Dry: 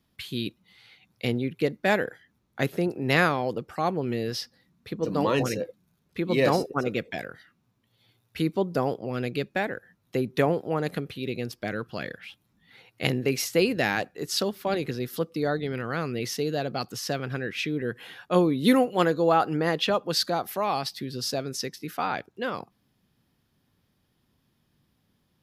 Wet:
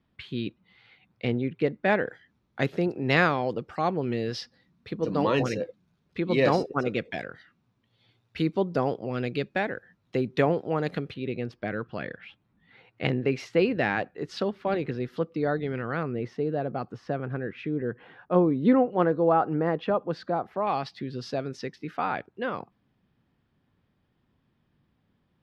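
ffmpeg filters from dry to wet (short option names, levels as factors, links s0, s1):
-af "asetnsamples=n=441:p=0,asendcmd='2.07 lowpass f 4600;11.14 lowpass f 2400;16.03 lowpass f 1300;20.67 lowpass f 2600',lowpass=2600"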